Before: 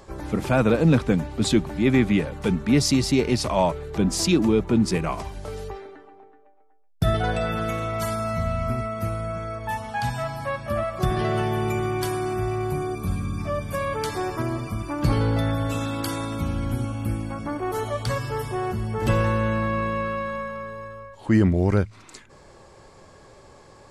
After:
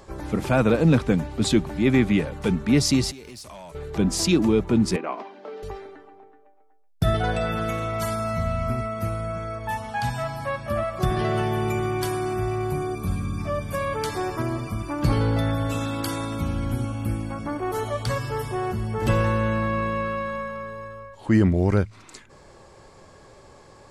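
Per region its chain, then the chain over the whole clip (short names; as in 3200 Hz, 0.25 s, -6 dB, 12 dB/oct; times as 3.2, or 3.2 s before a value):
3.11–3.75 pre-emphasis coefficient 0.8 + compressor 10:1, threshold -35 dBFS + hard clip -35 dBFS
4.96–5.63 elliptic high-pass 230 Hz, stop band 60 dB + air absorption 270 m
whole clip: dry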